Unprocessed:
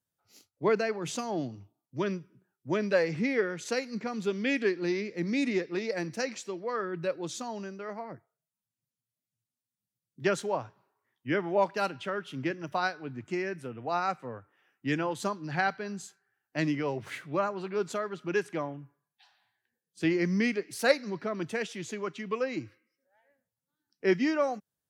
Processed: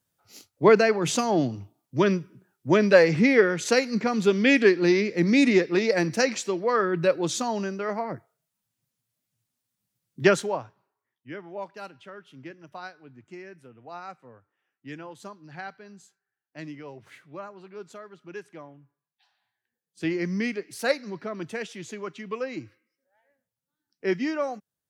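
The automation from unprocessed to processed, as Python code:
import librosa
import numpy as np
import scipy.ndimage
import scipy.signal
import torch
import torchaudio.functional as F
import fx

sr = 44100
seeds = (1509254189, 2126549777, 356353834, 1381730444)

y = fx.gain(x, sr, db=fx.line((10.25, 9.5), (10.63, -0.5), (11.36, -10.0), (18.67, -10.0), (20.07, -0.5)))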